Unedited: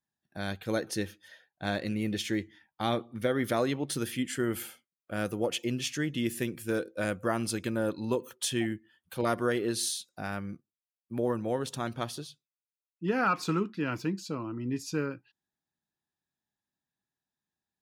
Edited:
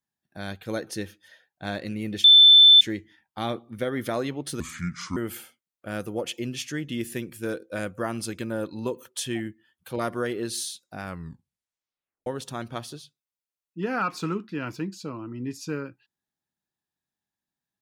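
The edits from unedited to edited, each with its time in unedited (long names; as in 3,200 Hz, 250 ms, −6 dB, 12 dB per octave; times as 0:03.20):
0:02.24: insert tone 3,530 Hz −9 dBFS 0.57 s
0:04.03–0:04.42: play speed 69%
0:10.28: tape stop 1.24 s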